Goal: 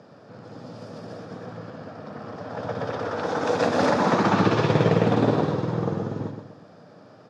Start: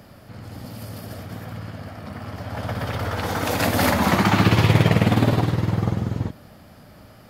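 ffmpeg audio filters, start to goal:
-af "highpass=f=140:w=0.5412,highpass=f=140:w=1.3066,equalizer=f=210:t=q:w=4:g=-4,equalizer=f=470:t=q:w=4:g=7,equalizer=f=2100:t=q:w=4:g=-10,equalizer=f=3000:t=q:w=4:g=-8,equalizer=f=4400:t=q:w=4:g=-6,lowpass=f=5700:w=0.5412,lowpass=f=5700:w=1.3066,aecho=1:1:123|246|369|492:0.447|0.17|0.0645|0.0245,volume=0.841"

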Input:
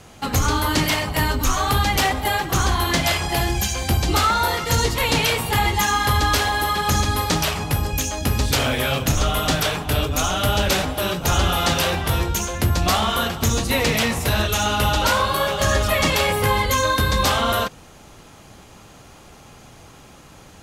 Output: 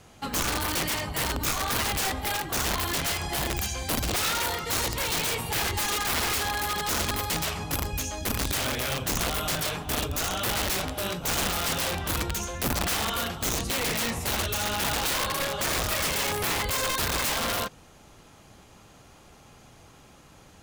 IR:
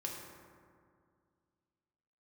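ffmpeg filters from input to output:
-af "aeval=exprs='(mod(5.01*val(0)+1,2)-1)/5.01':c=same,volume=0.422"

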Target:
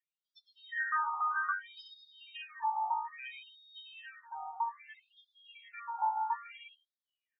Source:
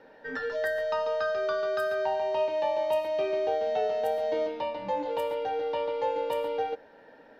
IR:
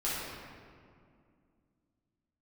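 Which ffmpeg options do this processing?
-filter_complex "[0:a]asplit=2[s0][s1];[1:a]atrim=start_sample=2205[s2];[s1][s2]afir=irnorm=-1:irlink=0,volume=0.355[s3];[s0][s3]amix=inputs=2:normalize=0,afftdn=nr=32:nf=-36,asplit=6[s4][s5][s6][s7][s8][s9];[s5]adelay=105,afreqshift=-74,volume=0.158[s10];[s6]adelay=210,afreqshift=-148,volume=0.0871[s11];[s7]adelay=315,afreqshift=-222,volume=0.0479[s12];[s8]adelay=420,afreqshift=-296,volume=0.0263[s13];[s9]adelay=525,afreqshift=-370,volume=0.0145[s14];[s4][s10][s11][s12][s13][s14]amix=inputs=6:normalize=0,afftfilt=real='re*between(b*sr/1024,990*pow(4700/990,0.5+0.5*sin(2*PI*0.61*pts/sr))/1.41,990*pow(4700/990,0.5+0.5*sin(2*PI*0.61*pts/sr))*1.41)':imag='im*between(b*sr/1024,990*pow(4700/990,0.5+0.5*sin(2*PI*0.61*pts/sr))/1.41,990*pow(4700/990,0.5+0.5*sin(2*PI*0.61*pts/sr))*1.41)':win_size=1024:overlap=0.75"

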